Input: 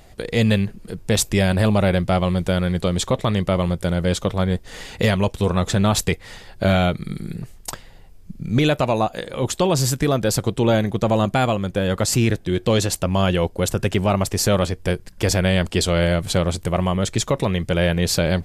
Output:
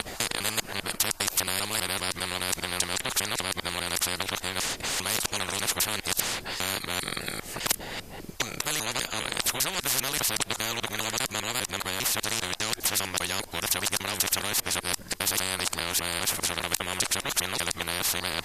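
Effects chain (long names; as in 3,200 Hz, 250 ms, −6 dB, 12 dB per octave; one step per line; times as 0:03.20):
reversed piece by piece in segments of 200 ms
every bin compressed towards the loudest bin 10 to 1
level +5 dB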